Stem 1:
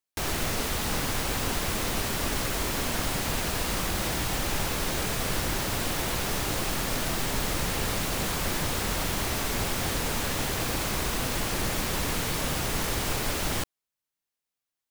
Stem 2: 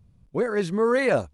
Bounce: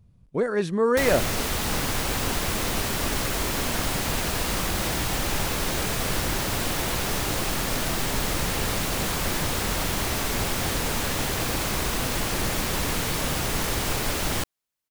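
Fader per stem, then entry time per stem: +2.5 dB, 0.0 dB; 0.80 s, 0.00 s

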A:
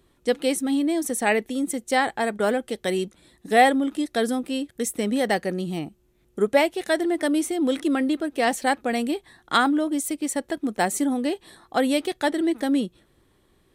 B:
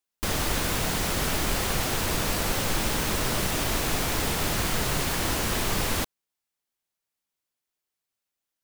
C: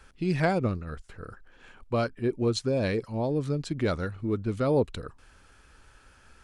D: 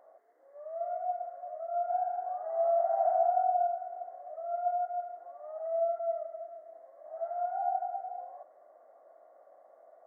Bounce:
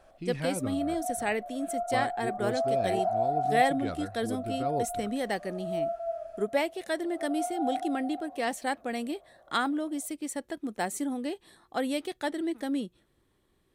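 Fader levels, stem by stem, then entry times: -8.5 dB, mute, -9.0 dB, -1.0 dB; 0.00 s, mute, 0.00 s, 0.00 s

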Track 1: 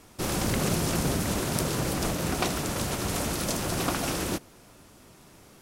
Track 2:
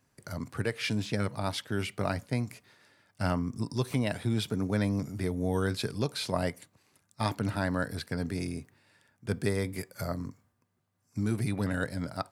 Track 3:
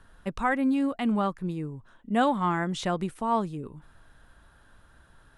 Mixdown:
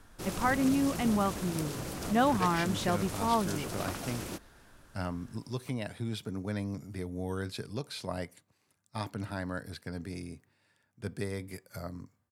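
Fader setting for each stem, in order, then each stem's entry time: -10.0 dB, -6.5 dB, -2.5 dB; 0.00 s, 1.75 s, 0.00 s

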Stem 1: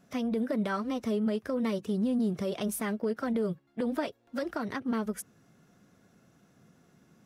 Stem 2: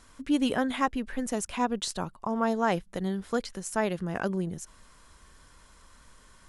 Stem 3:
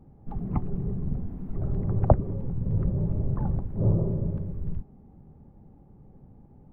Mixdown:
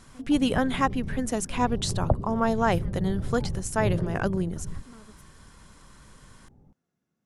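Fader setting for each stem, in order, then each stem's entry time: -19.5 dB, +2.5 dB, -4.5 dB; 0.00 s, 0.00 s, 0.00 s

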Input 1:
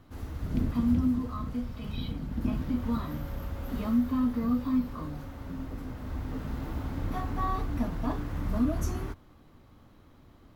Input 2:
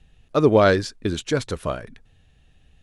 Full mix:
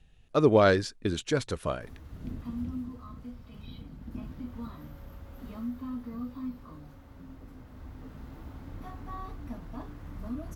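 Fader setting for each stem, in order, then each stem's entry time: -10.0 dB, -5.0 dB; 1.70 s, 0.00 s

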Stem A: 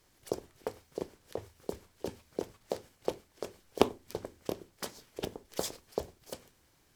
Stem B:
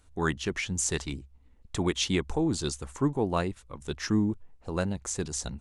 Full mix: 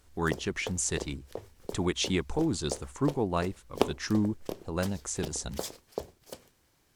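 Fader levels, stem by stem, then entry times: -1.0 dB, -1.5 dB; 0.00 s, 0.00 s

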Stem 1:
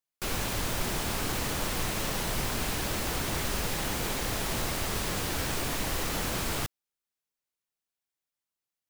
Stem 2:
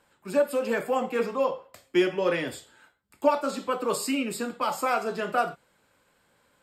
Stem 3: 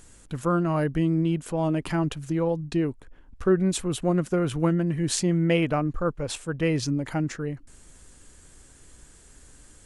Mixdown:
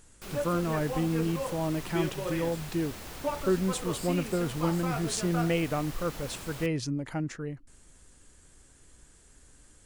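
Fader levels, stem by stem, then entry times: -11.5 dB, -10.0 dB, -5.5 dB; 0.00 s, 0.00 s, 0.00 s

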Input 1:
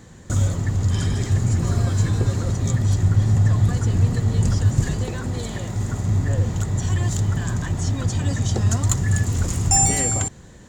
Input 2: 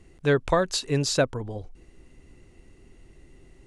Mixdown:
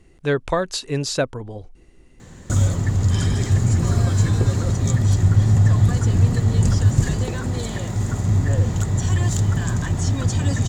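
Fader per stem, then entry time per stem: +2.0 dB, +1.0 dB; 2.20 s, 0.00 s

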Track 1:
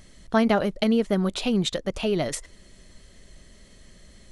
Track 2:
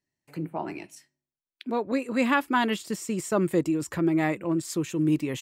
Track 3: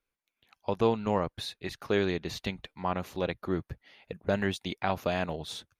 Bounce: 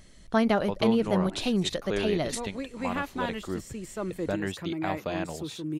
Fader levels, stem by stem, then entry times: -3.0 dB, -9.0 dB, -3.0 dB; 0.00 s, 0.65 s, 0.00 s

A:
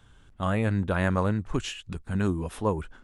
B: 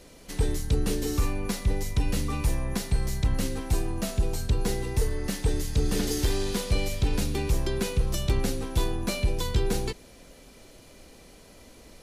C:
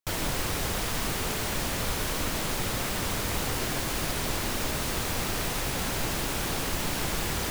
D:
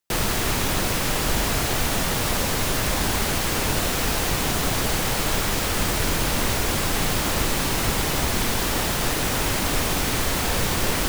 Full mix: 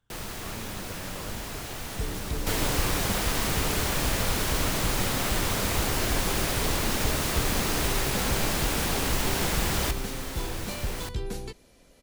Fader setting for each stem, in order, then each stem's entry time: -18.0 dB, -7.5 dB, +2.0 dB, -13.5 dB; 0.00 s, 1.60 s, 2.40 s, 0.00 s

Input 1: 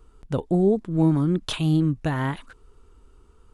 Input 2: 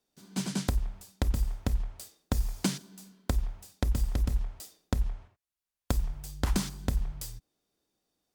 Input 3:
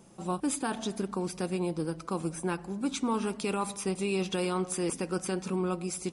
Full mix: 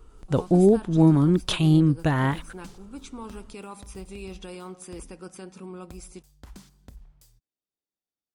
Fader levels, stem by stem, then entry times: +2.5 dB, -18.0 dB, -9.5 dB; 0.00 s, 0.00 s, 0.10 s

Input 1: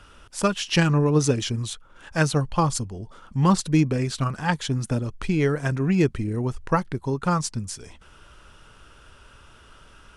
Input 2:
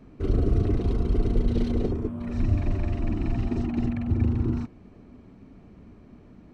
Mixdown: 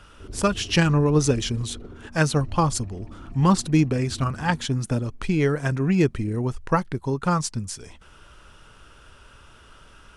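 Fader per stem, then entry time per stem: +0.5 dB, -15.0 dB; 0.00 s, 0.00 s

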